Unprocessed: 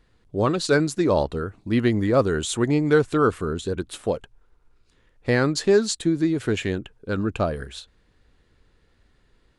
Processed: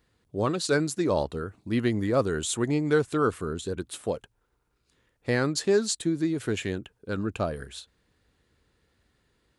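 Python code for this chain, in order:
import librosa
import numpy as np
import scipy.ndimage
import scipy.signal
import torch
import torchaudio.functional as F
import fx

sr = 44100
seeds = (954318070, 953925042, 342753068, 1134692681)

y = scipy.signal.sosfilt(scipy.signal.butter(2, 60.0, 'highpass', fs=sr, output='sos'), x)
y = fx.high_shelf(y, sr, hz=9000.0, db=11.0)
y = y * 10.0 ** (-5.0 / 20.0)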